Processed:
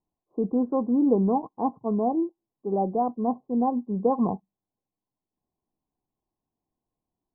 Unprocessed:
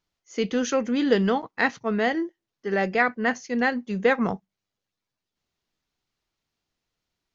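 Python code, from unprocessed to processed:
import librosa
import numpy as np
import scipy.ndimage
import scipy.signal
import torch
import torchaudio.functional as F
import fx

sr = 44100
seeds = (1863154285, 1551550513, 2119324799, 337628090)

y = scipy.signal.sosfilt(scipy.signal.cheby1(6, 6, 1100.0, 'lowpass', fs=sr, output='sos'), x)
y = y * librosa.db_to_amplitude(2.5)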